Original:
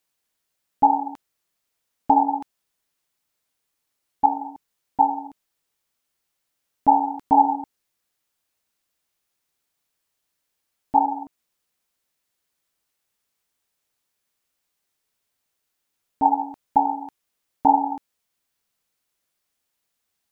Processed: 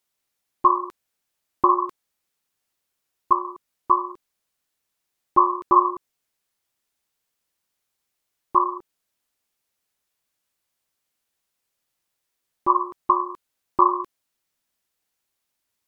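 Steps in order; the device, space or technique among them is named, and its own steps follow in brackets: nightcore (tape speed +28%)

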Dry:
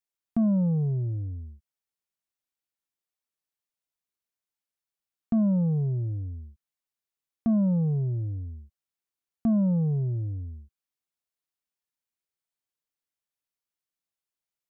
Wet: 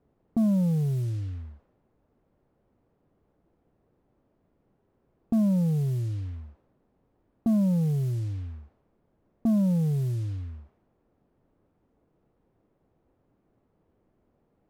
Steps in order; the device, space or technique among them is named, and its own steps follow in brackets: cassette deck with a dynamic noise filter (white noise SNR 23 dB; level-controlled noise filter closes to 330 Hz, open at -25 dBFS)

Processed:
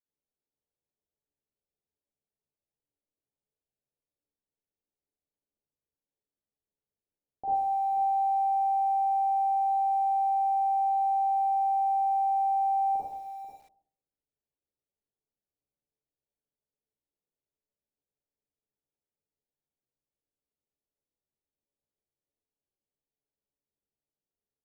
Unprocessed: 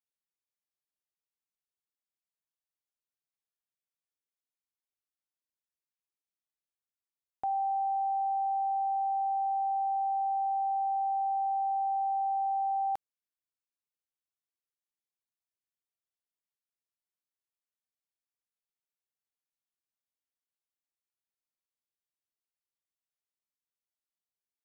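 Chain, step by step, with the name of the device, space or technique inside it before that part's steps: next room (low-pass 690 Hz 24 dB/octave; reverberation RT60 0.55 s, pre-delay 38 ms, DRR -6.5 dB); 9.57–10.78 s: hum notches 60/120/180/240/300/360/420/480/540 Hz; echo from a far wall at 84 m, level -12 dB; early reflections 14 ms -7.5 dB, 52 ms -18 dB; bit-crushed delay 113 ms, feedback 35%, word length 9-bit, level -11.5 dB

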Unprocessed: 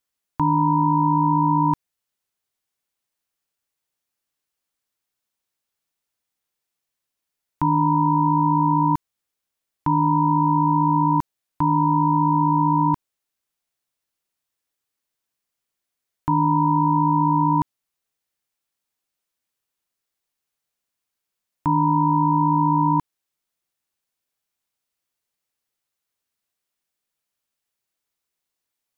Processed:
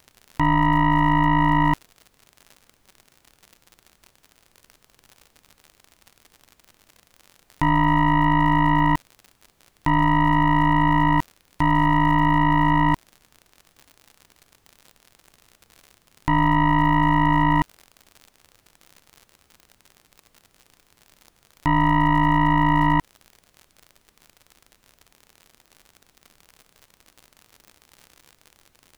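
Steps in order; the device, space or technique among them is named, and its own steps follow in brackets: record under a worn stylus (tracing distortion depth 0.28 ms; crackle 73 per s -33 dBFS; pink noise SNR 41 dB)

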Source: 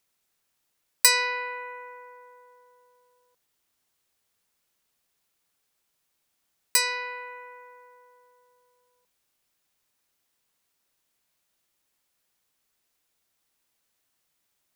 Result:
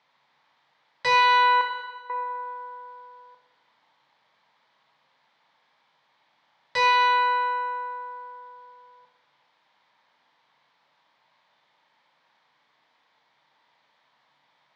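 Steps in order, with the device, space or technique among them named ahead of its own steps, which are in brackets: overdrive pedal into a guitar cabinet (overdrive pedal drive 31 dB, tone 4.5 kHz, clips at -2 dBFS; cabinet simulation 110–3600 Hz, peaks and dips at 140 Hz +10 dB, 380 Hz -8 dB, 920 Hz +8 dB, 1.4 kHz -4 dB, 2.7 kHz -9 dB); 1.61–2.10 s: gate -12 dBFS, range -19 dB; Schroeder reverb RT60 1.3 s, combs from 28 ms, DRR 3 dB; trim -7.5 dB

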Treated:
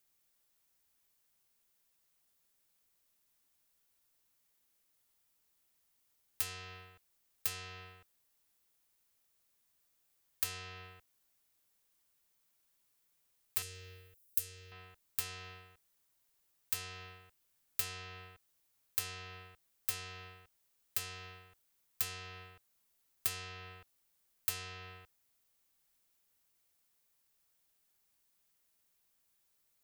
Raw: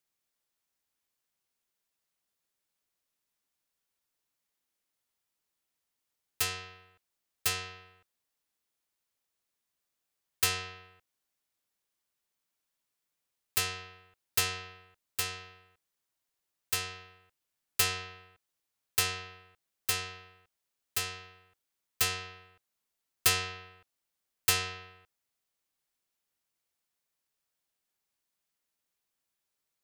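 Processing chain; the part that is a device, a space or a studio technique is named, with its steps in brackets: 13.62–14.72 s: FFT filter 110 Hz 0 dB, 220 Hz -12 dB, 540 Hz +2 dB, 790 Hz -25 dB, 1.6 kHz -9 dB, 4.4 kHz -4 dB, 12 kHz +8 dB; ASMR close-microphone chain (bass shelf 100 Hz +7 dB; compression 5:1, threshold -44 dBFS, peak gain reduction 23.5 dB; treble shelf 9.8 kHz +8 dB); trim +3.5 dB

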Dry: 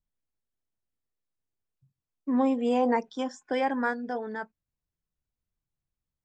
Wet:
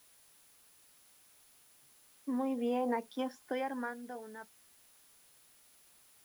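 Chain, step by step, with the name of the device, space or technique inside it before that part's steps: medium wave at night (band-pass 150–4200 Hz; compression, threshold -26 dBFS, peak gain reduction 6.5 dB; tremolo 0.34 Hz, depth 68%; whistle 10 kHz -64 dBFS; white noise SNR 24 dB); trim -3 dB

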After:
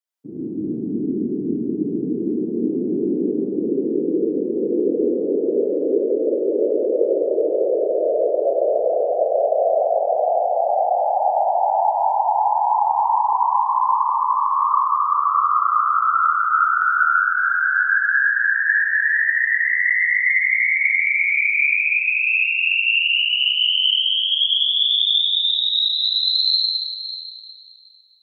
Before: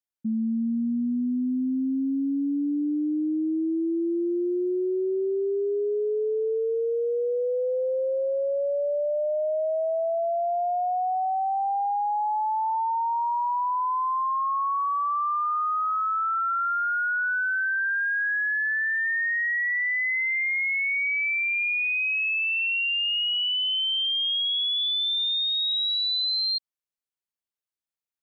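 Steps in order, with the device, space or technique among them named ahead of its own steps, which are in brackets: whispering ghost (whisper effect; high-pass 310 Hz 12 dB/octave; reverberation RT60 3.2 s, pre-delay 50 ms, DRR -6.5 dB)

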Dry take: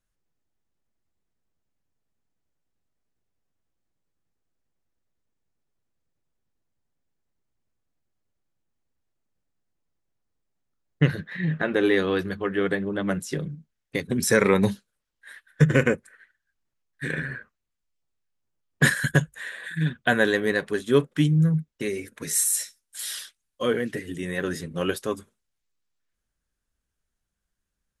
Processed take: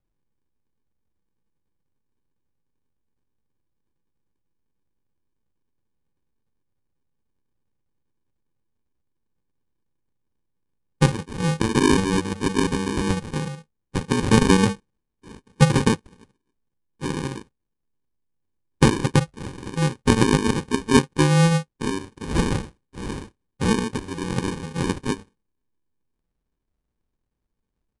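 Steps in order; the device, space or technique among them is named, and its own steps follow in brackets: crushed at another speed (playback speed 2×; sample-and-hold 33×; playback speed 0.5×); trim +3 dB

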